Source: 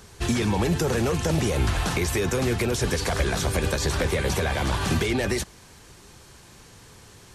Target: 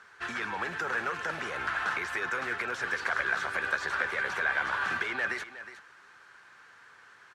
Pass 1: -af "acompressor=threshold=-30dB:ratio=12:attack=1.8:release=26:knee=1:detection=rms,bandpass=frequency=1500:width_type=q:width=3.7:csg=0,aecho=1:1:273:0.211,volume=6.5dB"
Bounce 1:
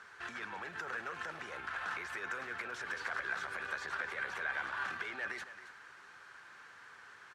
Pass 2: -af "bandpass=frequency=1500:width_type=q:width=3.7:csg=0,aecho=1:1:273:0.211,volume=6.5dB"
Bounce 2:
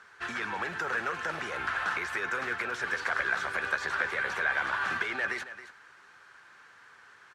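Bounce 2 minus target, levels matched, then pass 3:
echo 91 ms early
-af "bandpass=frequency=1500:width_type=q:width=3.7:csg=0,aecho=1:1:364:0.211,volume=6.5dB"

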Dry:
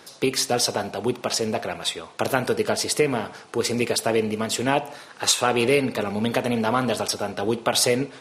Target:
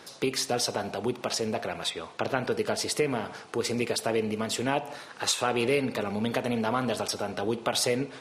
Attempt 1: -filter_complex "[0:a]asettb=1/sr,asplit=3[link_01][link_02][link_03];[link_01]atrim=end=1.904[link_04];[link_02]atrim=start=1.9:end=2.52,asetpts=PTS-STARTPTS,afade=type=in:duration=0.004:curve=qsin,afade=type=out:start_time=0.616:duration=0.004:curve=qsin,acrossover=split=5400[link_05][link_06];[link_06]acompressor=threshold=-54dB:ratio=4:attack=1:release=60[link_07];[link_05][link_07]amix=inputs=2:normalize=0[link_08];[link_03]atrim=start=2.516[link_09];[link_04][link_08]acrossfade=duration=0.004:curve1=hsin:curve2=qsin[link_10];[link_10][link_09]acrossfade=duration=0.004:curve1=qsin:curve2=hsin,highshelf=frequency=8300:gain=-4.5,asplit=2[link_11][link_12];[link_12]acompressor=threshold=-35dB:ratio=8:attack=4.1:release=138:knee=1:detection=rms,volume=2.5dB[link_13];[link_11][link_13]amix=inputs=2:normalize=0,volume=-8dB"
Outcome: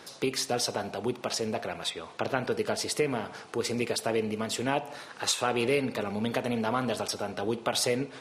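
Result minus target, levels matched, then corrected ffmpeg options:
downward compressor: peak gain reduction +5.5 dB
-filter_complex "[0:a]asettb=1/sr,asplit=3[link_01][link_02][link_03];[link_01]atrim=end=1.904[link_04];[link_02]atrim=start=1.9:end=2.52,asetpts=PTS-STARTPTS,afade=type=in:duration=0.004:curve=qsin,afade=type=out:start_time=0.616:duration=0.004:curve=qsin,acrossover=split=5400[link_05][link_06];[link_06]acompressor=threshold=-54dB:ratio=4:attack=1:release=60[link_07];[link_05][link_07]amix=inputs=2:normalize=0[link_08];[link_03]atrim=start=2.516[link_09];[link_04][link_08]acrossfade=duration=0.004:curve1=hsin:curve2=qsin[link_10];[link_10][link_09]acrossfade=duration=0.004:curve1=qsin:curve2=hsin,highshelf=frequency=8300:gain=-4.5,asplit=2[link_11][link_12];[link_12]acompressor=threshold=-28.5dB:ratio=8:attack=4.1:release=138:knee=1:detection=rms,volume=2.5dB[link_13];[link_11][link_13]amix=inputs=2:normalize=0,volume=-8dB"

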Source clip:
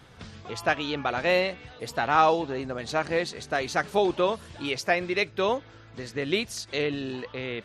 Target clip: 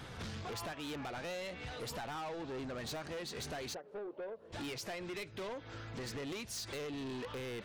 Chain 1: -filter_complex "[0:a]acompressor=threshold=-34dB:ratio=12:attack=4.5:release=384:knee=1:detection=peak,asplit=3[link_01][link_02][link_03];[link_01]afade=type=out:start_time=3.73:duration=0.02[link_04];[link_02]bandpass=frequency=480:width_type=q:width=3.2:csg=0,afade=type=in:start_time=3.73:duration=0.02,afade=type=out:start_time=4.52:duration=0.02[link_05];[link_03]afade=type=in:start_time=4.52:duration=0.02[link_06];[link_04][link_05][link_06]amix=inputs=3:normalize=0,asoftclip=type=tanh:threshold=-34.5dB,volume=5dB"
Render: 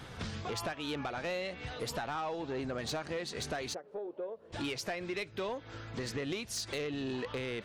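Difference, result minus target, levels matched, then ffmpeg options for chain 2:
soft clipping: distortion −8 dB
-filter_complex "[0:a]acompressor=threshold=-34dB:ratio=12:attack=4.5:release=384:knee=1:detection=peak,asplit=3[link_01][link_02][link_03];[link_01]afade=type=out:start_time=3.73:duration=0.02[link_04];[link_02]bandpass=frequency=480:width_type=q:width=3.2:csg=0,afade=type=in:start_time=3.73:duration=0.02,afade=type=out:start_time=4.52:duration=0.02[link_05];[link_03]afade=type=in:start_time=4.52:duration=0.02[link_06];[link_04][link_05][link_06]amix=inputs=3:normalize=0,asoftclip=type=tanh:threshold=-44dB,volume=5dB"

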